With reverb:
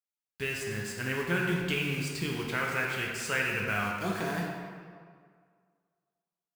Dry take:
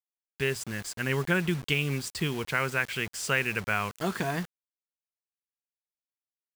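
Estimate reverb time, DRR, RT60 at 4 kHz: 2.0 s, -2.0 dB, 1.3 s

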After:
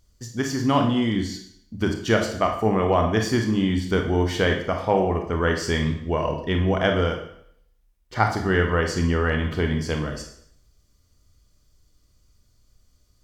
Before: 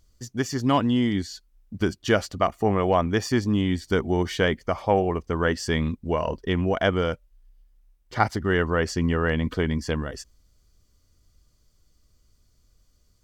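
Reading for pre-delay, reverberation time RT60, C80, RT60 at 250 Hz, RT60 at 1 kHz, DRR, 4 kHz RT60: 27 ms, 0.65 s, 10.0 dB, 0.65 s, 0.65 s, 3.0 dB, 0.65 s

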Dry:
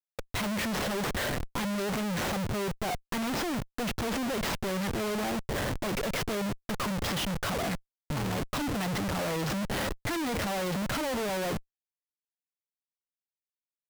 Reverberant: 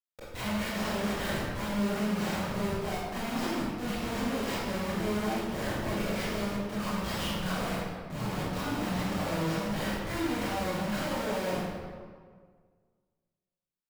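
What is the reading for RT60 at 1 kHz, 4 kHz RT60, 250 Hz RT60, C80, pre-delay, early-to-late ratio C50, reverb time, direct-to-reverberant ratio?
1.7 s, 1.1 s, 1.8 s, -0.5 dB, 20 ms, -3.0 dB, 1.8 s, -11.5 dB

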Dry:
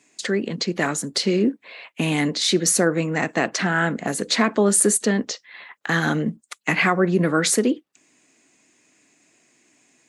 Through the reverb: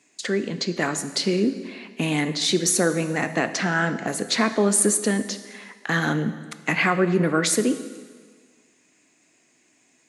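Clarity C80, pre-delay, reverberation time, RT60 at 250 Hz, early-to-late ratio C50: 13.0 dB, 7 ms, 1.6 s, 1.6 s, 12.0 dB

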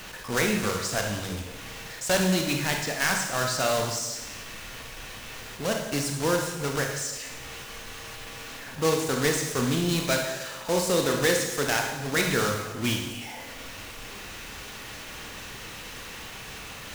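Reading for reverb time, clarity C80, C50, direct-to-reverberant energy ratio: 1.0 s, 6.5 dB, 4.0 dB, 2.0 dB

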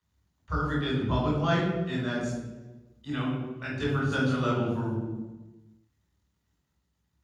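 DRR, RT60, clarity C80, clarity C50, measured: -4.5 dB, 1.2 s, 4.5 dB, 1.5 dB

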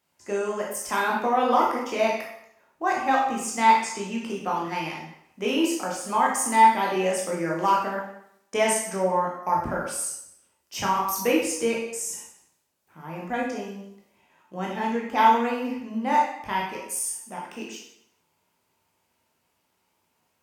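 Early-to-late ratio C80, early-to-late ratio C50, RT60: 6.0 dB, 3.0 dB, 0.75 s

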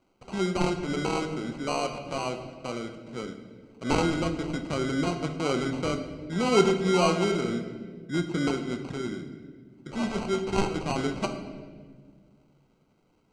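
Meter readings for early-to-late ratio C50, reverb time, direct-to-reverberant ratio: 8.5 dB, 1.6 s, 6.0 dB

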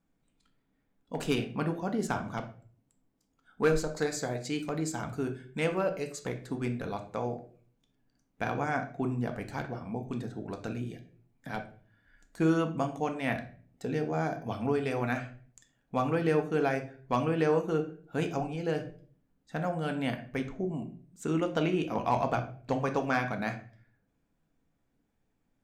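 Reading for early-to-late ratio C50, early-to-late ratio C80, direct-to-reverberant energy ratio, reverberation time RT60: 11.5 dB, 16.5 dB, 4.5 dB, 0.45 s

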